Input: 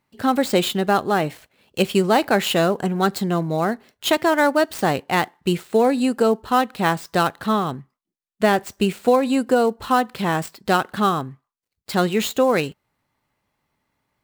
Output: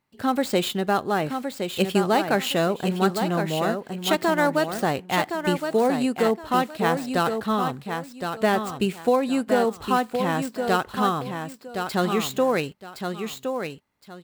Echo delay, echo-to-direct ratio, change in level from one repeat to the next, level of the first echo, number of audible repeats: 1.066 s, -6.5 dB, -12.5 dB, -6.5 dB, 2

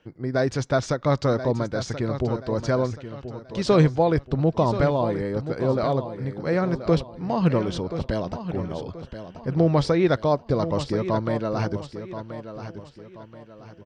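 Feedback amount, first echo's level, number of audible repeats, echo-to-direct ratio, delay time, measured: 37%, -11.0 dB, 3, -10.5 dB, 1.03 s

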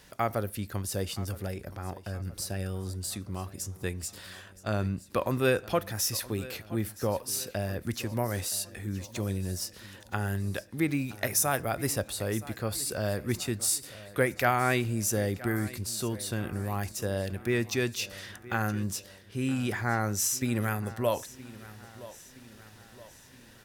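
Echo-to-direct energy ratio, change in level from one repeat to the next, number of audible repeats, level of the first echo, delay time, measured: -17.0 dB, -6.0 dB, 3, -18.0 dB, 0.97 s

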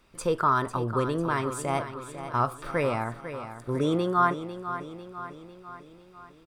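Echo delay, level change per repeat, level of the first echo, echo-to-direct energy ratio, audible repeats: 0.498 s, -5.0 dB, -11.0 dB, -9.5 dB, 5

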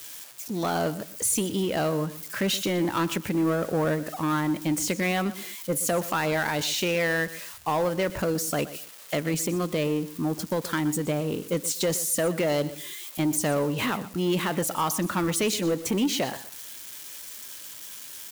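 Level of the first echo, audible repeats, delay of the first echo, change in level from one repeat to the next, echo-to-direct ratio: -16.0 dB, 2, 0.123 s, -13.0 dB, -16.0 dB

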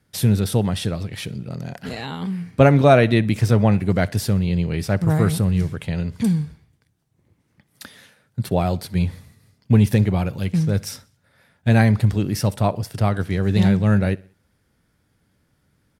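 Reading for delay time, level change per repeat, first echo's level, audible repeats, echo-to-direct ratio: 63 ms, -7.0 dB, -24.0 dB, 2, -23.0 dB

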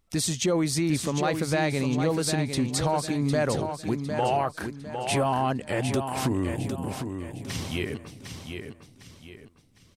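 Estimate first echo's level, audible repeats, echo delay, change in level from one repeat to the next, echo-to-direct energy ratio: -7.0 dB, 4, 0.755 s, -9.0 dB, -6.5 dB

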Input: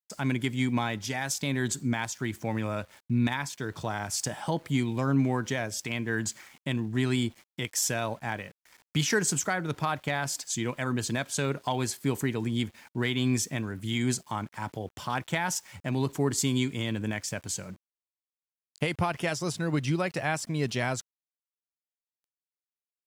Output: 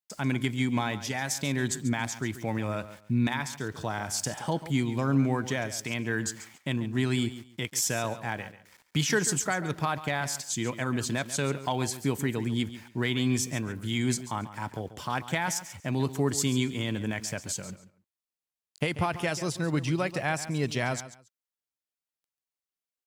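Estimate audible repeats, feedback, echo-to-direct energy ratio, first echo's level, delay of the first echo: 2, 21%, -14.0 dB, -14.0 dB, 0.139 s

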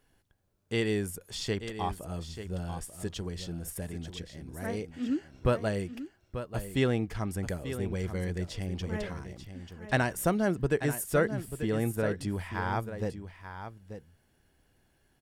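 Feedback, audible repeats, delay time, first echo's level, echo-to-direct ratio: no steady repeat, 1, 0.888 s, -10.5 dB, -10.5 dB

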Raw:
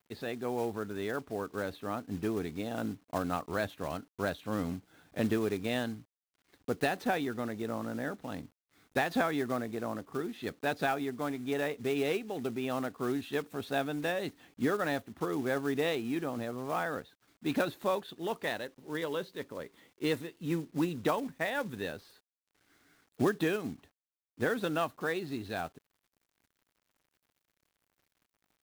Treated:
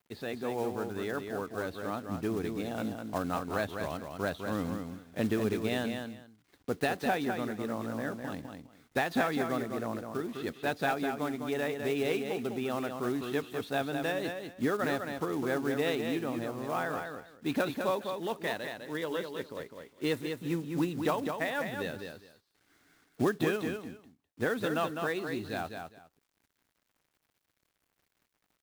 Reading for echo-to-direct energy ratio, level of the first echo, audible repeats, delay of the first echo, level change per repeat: -6.0 dB, -6.0 dB, 2, 0.204 s, -14.5 dB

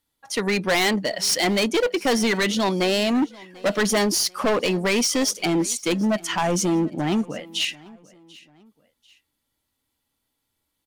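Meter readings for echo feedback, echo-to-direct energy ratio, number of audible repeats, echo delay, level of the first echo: 37%, -22.5 dB, 2, 0.741 s, -23.0 dB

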